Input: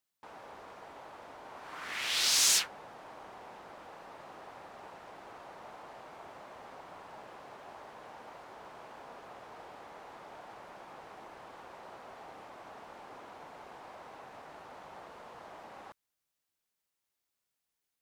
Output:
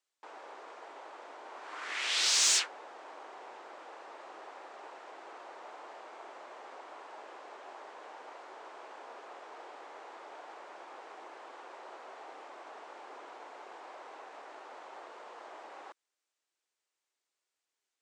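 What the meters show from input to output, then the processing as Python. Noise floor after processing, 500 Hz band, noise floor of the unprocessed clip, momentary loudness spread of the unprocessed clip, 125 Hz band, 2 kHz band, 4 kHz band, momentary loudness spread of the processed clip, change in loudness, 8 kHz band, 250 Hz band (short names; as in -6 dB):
under -85 dBFS, +0.5 dB, under -85 dBFS, 20 LU, under -15 dB, +1.0 dB, 0.0 dB, 21 LU, -0.5 dB, 0.0 dB, -3.0 dB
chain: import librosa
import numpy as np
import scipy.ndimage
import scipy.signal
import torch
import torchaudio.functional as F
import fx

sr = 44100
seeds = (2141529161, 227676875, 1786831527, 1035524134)

y = scipy.signal.sosfilt(scipy.signal.cheby1(3, 1.0, [340.0, 8000.0], 'bandpass', fs=sr, output='sos'), x)
y = 10.0 ** (-17.0 / 20.0) * np.tanh(y / 10.0 ** (-17.0 / 20.0))
y = y * librosa.db_to_amplitude(1.5)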